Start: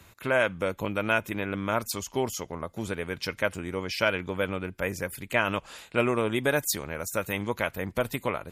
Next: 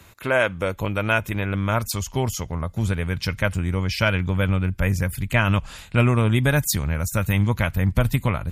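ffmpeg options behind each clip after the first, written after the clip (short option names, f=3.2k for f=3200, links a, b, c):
-af "asubboost=boost=9.5:cutoff=130,volume=4.5dB"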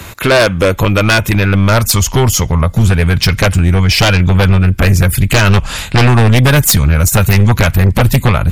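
-filter_complex "[0:a]asplit=2[a][b];[b]acompressor=threshold=-27dB:ratio=6,volume=2dB[c];[a][c]amix=inputs=2:normalize=0,aeval=exprs='0.668*(cos(1*acos(clip(val(0)/0.668,-1,1)))-cos(1*PI/2))+0.0376*(cos(6*acos(clip(val(0)/0.668,-1,1)))-cos(6*PI/2))':c=same,aeval=exprs='0.631*sin(PI/2*2.82*val(0)/0.631)':c=same"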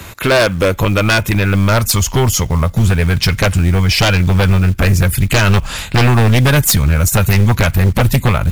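-af "acrusher=bits=7:mode=log:mix=0:aa=0.000001,volume=-2.5dB"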